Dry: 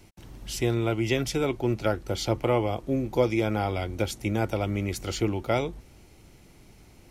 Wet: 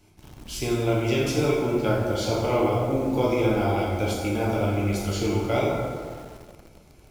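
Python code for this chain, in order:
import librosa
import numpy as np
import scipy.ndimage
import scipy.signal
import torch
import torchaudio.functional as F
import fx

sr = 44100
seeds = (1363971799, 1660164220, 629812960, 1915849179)

p1 = fx.notch(x, sr, hz=1900.0, q=8.8)
p2 = fx.rev_plate(p1, sr, seeds[0], rt60_s=2.0, hf_ratio=0.5, predelay_ms=0, drr_db=-5.5)
p3 = fx.quant_dither(p2, sr, seeds[1], bits=6, dither='none')
p4 = p2 + (p3 * 10.0 ** (-7.0 / 20.0))
y = p4 * 10.0 ** (-6.5 / 20.0)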